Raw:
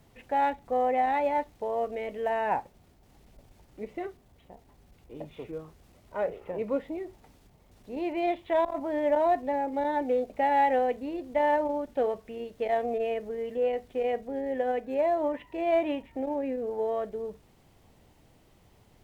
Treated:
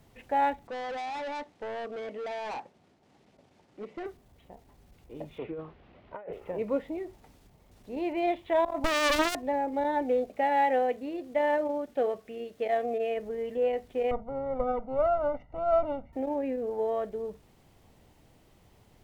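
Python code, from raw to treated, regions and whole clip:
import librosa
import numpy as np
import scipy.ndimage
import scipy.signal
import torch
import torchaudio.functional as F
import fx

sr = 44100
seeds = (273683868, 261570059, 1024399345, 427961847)

y = fx.chain(x, sr, fx.highpass(hz=170.0, slope=12),
    fx.overload_stage(gain_db=34.0),
    fx.air_absorb(metres=75.0), at=(0.67, 4.06))
y = fx.chain(y, sr, fx.lowpass(hz=3200.0, slope=24),
    fx.low_shelf(hz=120.0, db=-9.0),
    fx.over_compress(threshold_db=-39.0, ratio=-1.0), at=(5.38, 6.33))
y = fx.chain(y, sr, fx.highpass(hz=460.0, slope=24),
    fx.leveller(passes=5),
    fx.running_max(window=33), at=(8.84, 9.35))
y = fx.chain(y, sr, fx.highpass(hz=180.0, slope=6),
    fx.notch(hz=930.0, q=7.5), at=(10.29, 13.17))
y = fx.chain(y, sr, fx.lower_of_two(delay_ms=0.45),
    fx.savgol(points=65),
    fx.comb(ms=1.4, depth=0.83), at=(14.11, 16.13))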